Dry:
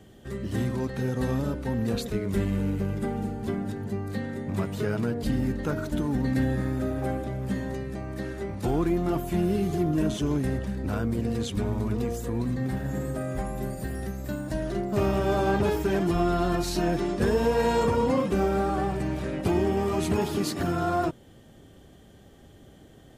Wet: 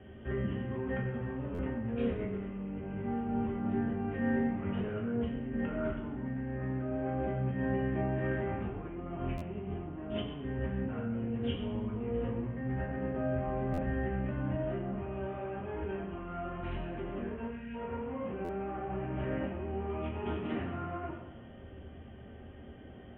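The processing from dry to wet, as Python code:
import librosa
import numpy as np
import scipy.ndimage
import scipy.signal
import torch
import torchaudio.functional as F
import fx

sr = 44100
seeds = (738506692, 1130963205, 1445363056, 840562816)

y = 10.0 ** (-21.0 / 20.0) * np.tanh(x / 10.0 ** (-21.0 / 20.0))
y = scipy.signal.sosfilt(scipy.signal.butter(16, 3100.0, 'lowpass', fs=sr, output='sos'), y)
y = fx.over_compress(y, sr, threshold_db=-34.0, ratio=-1.0)
y = fx.spec_box(y, sr, start_s=17.49, length_s=0.26, low_hz=270.0, high_hz=1400.0, gain_db=-22)
y = fx.rev_fdn(y, sr, rt60_s=0.95, lf_ratio=0.95, hf_ratio=0.95, size_ms=76.0, drr_db=-3.0)
y = fx.buffer_glitch(y, sr, at_s=(1.54, 9.37, 13.73, 18.44), block=512, repeats=3)
y = y * librosa.db_to_amplitude(-7.0)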